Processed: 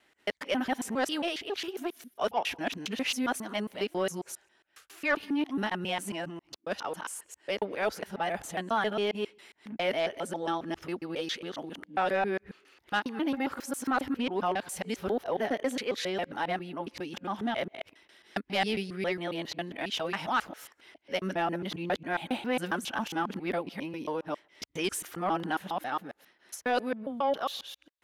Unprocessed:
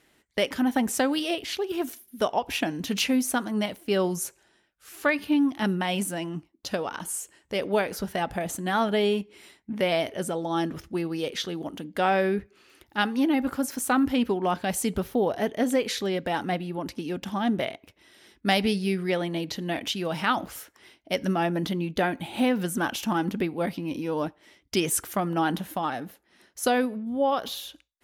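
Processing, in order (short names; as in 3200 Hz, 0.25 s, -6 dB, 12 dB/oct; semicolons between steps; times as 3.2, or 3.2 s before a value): local time reversal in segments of 0.136 s; overdrive pedal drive 11 dB, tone 3200 Hz, clips at -9.5 dBFS; gain -6.5 dB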